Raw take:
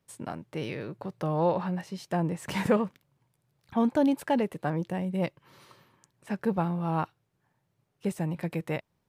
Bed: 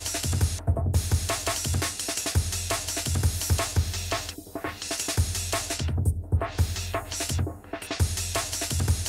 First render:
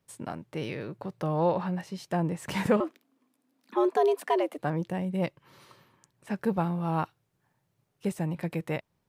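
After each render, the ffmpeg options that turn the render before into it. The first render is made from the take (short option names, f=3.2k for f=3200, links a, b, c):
-filter_complex "[0:a]asettb=1/sr,asplit=3[a][b][c];[a]atrim=end=2.804[d];[b]atrim=start=2.8:end=4.58,asetpts=PTS-STARTPTS,afade=t=in:d=0.004:c=qsin,afade=t=out:st=1.776:d=0.004:c=qsin,afreqshift=130[e];[c]atrim=start=4.576[f];[d][e]acrossfade=d=0.004:c1=hsin:c2=qsin[g];[g][f]acrossfade=d=0.004:c1=qsin:c2=hsin,asettb=1/sr,asplit=3[h][i][j];[h]atrim=end=6.364[k];[i]atrim=start=6.36:end=8.09,asetpts=PTS-STARTPTS,afade=t=in:d=0.004:c=qsin,afade=t=out:st=1.726:d=0.004:c=qsin,highshelf=f=5.5k:g=4[l];[j]atrim=start=8.086[m];[k][l]acrossfade=d=0.004:c1=hsin:c2=qsin[n];[n][m]acrossfade=d=0.004:c1=qsin:c2=hsin"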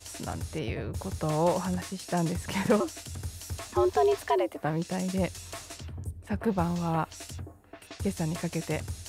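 -filter_complex "[1:a]volume=-13dB[a];[0:a][a]amix=inputs=2:normalize=0"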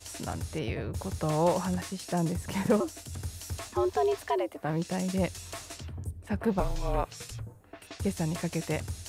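-filter_complex "[0:a]asettb=1/sr,asplit=3[a][b][c];[a]atrim=end=2.124[d];[b]atrim=start=2.12:end=3.13,asetpts=PTS-STARTPTS,afade=t=in:d=0.004:c=qsin,afade=t=out:st=1.006:d=0.004:c=qsin,equalizer=f=2.6k:w=0.38:g=-5[e];[c]atrim=start=3.126[f];[d][e]acrossfade=d=0.004:c1=hsin:c2=qsin[g];[g][f]acrossfade=d=0.004:c1=qsin:c2=hsin,asettb=1/sr,asplit=3[h][i][j];[h]atrim=end=6.604[k];[i]atrim=start=6.6:end=7.61,asetpts=PTS-STARTPTS,afade=t=in:d=0.004:c=qsin,afade=t=out:st=1.006:d=0.004:c=qsin,afreqshift=-200[l];[j]atrim=start=7.606[m];[k][l]acrossfade=d=0.004:c1=hsin:c2=qsin[n];[n][m]acrossfade=d=0.004:c1=qsin:c2=hsin,asplit=3[o][p][q];[o]atrim=end=3.692[r];[p]atrim=start=3.688:end=4.692,asetpts=PTS-STARTPTS,volume=-3dB[s];[q]atrim=start=4.688[t];[r][s]acrossfade=d=0.004:c1=hsin:c2=hsin[u];[u][t]acrossfade=d=0.004:c1=hsin:c2=hsin"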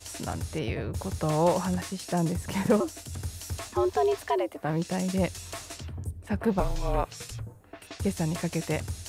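-af "volume=2dB"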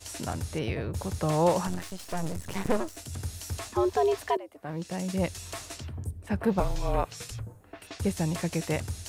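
-filter_complex "[0:a]asettb=1/sr,asplit=3[a][b][c];[a]atrim=end=1.674[d];[b]atrim=start=1.67:end=2.97,asetpts=PTS-STARTPTS,afade=t=in:d=0.004:c=qsin,afade=t=out:st=1.296:d=0.004:c=qsin,aeval=exprs='max(val(0),0)':c=same[e];[c]atrim=start=2.966[f];[d][e]acrossfade=d=0.004:c1=hsin:c2=qsin[g];[g][f]acrossfade=d=0.004:c1=qsin:c2=hsin,asplit=2[h][i];[h]atrim=end=4.37,asetpts=PTS-STARTPTS,afade=t=out:st=4.366:d=0.004:c=hsin:silence=0.158489[j];[i]atrim=start=4.37,asetpts=PTS-STARTPTS,afade=t=in:d=1.06:silence=0.158489[k];[j][k]concat=n=2:v=0:a=1"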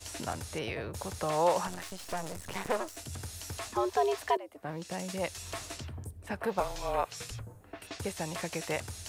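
-filter_complex "[0:a]acrossover=split=450|4400[a][b][c];[a]acompressor=threshold=-39dB:ratio=10[d];[c]alimiter=level_in=12.5dB:limit=-24dB:level=0:latency=1:release=79,volume=-12.5dB[e];[d][b][e]amix=inputs=3:normalize=0"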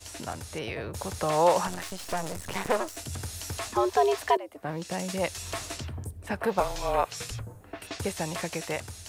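-af "dynaudnorm=f=350:g=5:m=5dB"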